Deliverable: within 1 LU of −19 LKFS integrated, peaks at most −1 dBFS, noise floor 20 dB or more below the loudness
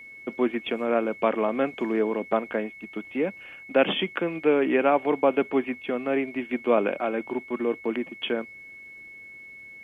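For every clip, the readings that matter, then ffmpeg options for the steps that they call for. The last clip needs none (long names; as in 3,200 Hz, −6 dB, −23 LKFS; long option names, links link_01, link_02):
interfering tone 2,200 Hz; level of the tone −42 dBFS; integrated loudness −26.0 LKFS; sample peak −8.0 dBFS; target loudness −19.0 LKFS
→ -af "bandreject=frequency=2200:width=30"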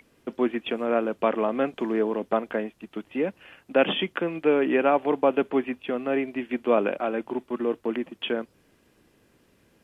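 interfering tone none found; integrated loudness −26.0 LKFS; sample peak −8.5 dBFS; target loudness −19.0 LKFS
→ -af "volume=7dB"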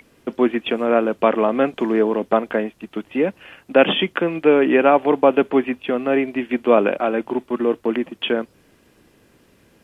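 integrated loudness −19.0 LKFS; sample peak −1.5 dBFS; background noise floor −57 dBFS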